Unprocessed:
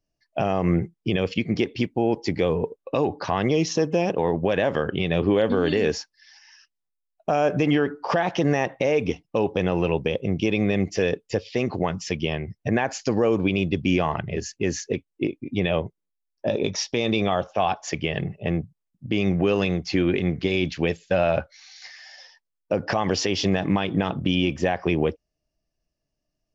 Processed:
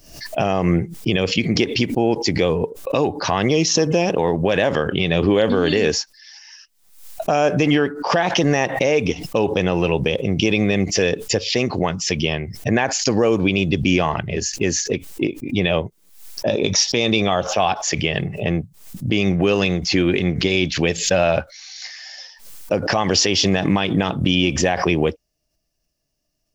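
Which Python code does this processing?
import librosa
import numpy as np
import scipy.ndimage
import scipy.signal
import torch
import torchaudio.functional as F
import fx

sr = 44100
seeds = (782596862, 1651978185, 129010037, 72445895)

y = fx.high_shelf(x, sr, hz=3800.0, db=10.5)
y = fx.pre_swell(y, sr, db_per_s=86.0)
y = F.gain(torch.from_numpy(y), 3.5).numpy()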